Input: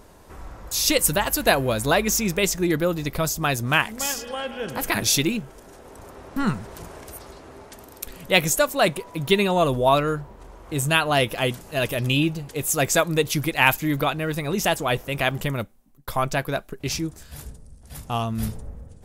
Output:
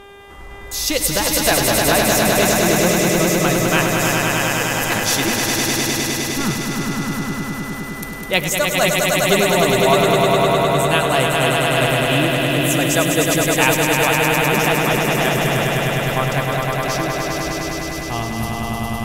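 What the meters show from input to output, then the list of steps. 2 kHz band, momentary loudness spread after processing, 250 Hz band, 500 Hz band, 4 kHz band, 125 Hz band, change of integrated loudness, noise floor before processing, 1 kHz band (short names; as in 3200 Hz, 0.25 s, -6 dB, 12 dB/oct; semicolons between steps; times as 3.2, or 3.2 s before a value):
+7.0 dB, 9 LU, +6.5 dB, +7.0 dB, +6.5 dB, +6.0 dB, +6.0 dB, -48 dBFS, +6.5 dB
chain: buzz 400 Hz, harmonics 9, -42 dBFS -4 dB/oct; swelling echo 0.102 s, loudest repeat 5, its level -4 dB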